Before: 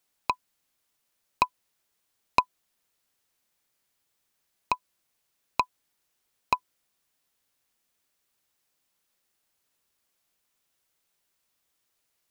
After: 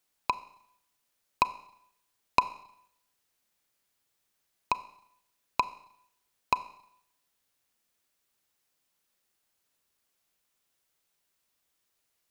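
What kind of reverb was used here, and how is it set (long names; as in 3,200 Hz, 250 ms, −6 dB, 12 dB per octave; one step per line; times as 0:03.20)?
four-comb reverb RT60 0.73 s, combs from 30 ms, DRR 14.5 dB
level −1.5 dB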